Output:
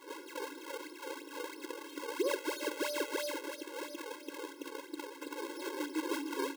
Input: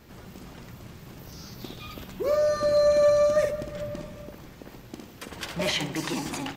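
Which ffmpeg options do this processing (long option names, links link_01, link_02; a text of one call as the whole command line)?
ffmpeg -i in.wav -af "lowpass=frequency=2000:poles=1,lowshelf=frequency=310:width_type=q:width=1.5:gain=10,alimiter=limit=-23dB:level=0:latency=1:release=427,acrusher=samples=38:mix=1:aa=0.000001:lfo=1:lforange=60.8:lforate=3,acontrast=66,afftfilt=real='re*eq(mod(floor(b*sr/1024/280),2),1)':imag='im*eq(mod(floor(b*sr/1024/280),2),1)':win_size=1024:overlap=0.75,volume=-5dB" out.wav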